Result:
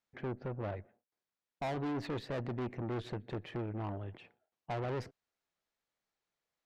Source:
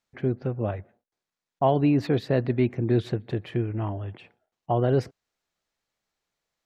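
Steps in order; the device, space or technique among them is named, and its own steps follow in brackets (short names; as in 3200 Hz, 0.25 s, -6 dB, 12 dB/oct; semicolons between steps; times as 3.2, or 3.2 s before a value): tube preamp driven hard (tube stage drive 30 dB, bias 0.55; low shelf 140 Hz -5 dB; high shelf 4600 Hz -6 dB); gain -3 dB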